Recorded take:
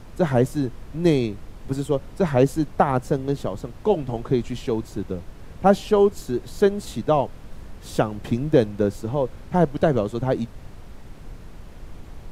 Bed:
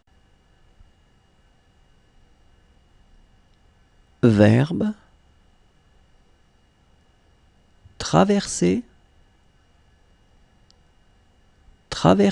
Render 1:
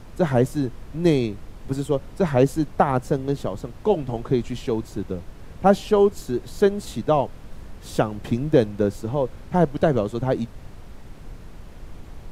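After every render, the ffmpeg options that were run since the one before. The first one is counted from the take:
ffmpeg -i in.wav -af anull out.wav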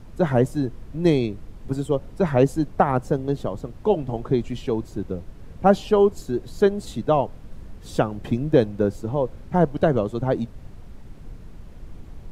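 ffmpeg -i in.wav -af "afftdn=noise_reduction=6:noise_floor=-42" out.wav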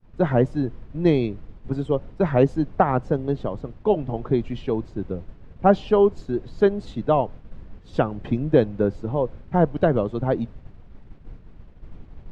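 ffmpeg -i in.wav -af "agate=range=-33dB:threshold=-33dB:ratio=3:detection=peak,lowpass=3400" out.wav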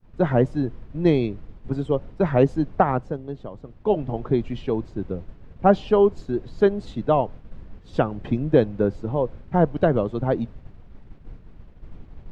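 ffmpeg -i in.wav -filter_complex "[0:a]asplit=3[link_01][link_02][link_03];[link_01]atrim=end=3.29,asetpts=PTS-STARTPTS,afade=type=out:start_time=2.89:duration=0.4:curve=qua:silence=0.375837[link_04];[link_02]atrim=start=3.29:end=3.54,asetpts=PTS-STARTPTS,volume=-8.5dB[link_05];[link_03]atrim=start=3.54,asetpts=PTS-STARTPTS,afade=type=in:duration=0.4:curve=qua:silence=0.375837[link_06];[link_04][link_05][link_06]concat=n=3:v=0:a=1" out.wav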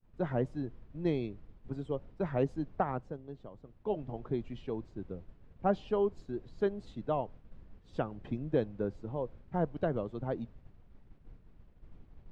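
ffmpeg -i in.wav -af "volume=-13dB" out.wav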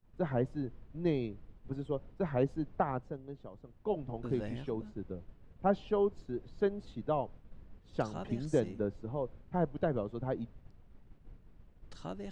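ffmpeg -i in.wav -i bed.wav -filter_complex "[1:a]volume=-27dB[link_01];[0:a][link_01]amix=inputs=2:normalize=0" out.wav

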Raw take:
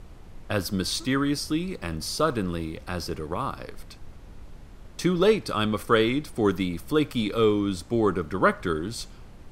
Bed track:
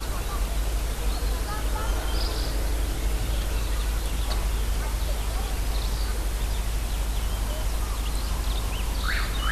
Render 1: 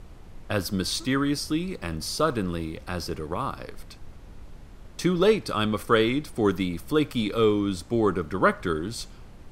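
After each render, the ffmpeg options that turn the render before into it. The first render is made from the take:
ffmpeg -i in.wav -af anull out.wav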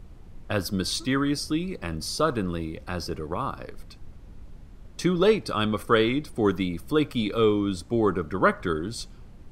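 ffmpeg -i in.wav -af "afftdn=noise_reduction=6:noise_floor=-46" out.wav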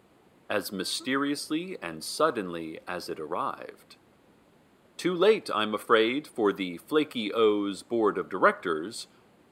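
ffmpeg -i in.wav -af "highpass=320,equalizer=frequency=5700:width=3.4:gain=-10" out.wav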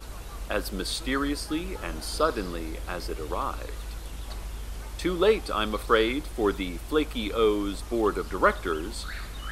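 ffmpeg -i in.wav -i bed.wav -filter_complex "[1:a]volume=-10.5dB[link_01];[0:a][link_01]amix=inputs=2:normalize=0" out.wav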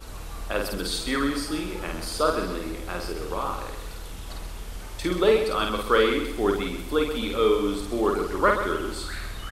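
ffmpeg -i in.wav -filter_complex "[0:a]asplit=2[link_01][link_02];[link_02]adelay=50,volume=-3.5dB[link_03];[link_01][link_03]amix=inputs=2:normalize=0,aecho=1:1:130|260|390|520:0.355|0.131|0.0486|0.018" out.wav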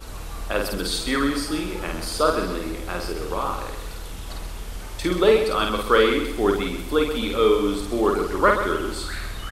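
ffmpeg -i in.wav -af "volume=3dB" out.wav

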